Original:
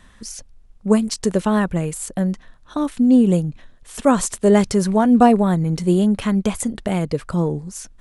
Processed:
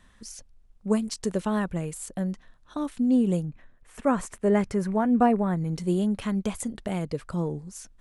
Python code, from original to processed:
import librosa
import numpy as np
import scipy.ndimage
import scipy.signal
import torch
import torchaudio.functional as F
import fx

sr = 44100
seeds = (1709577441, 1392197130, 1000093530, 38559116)

y = fx.high_shelf_res(x, sr, hz=2800.0, db=-7.5, q=1.5, at=(3.45, 5.57))
y = y * librosa.db_to_amplitude(-8.5)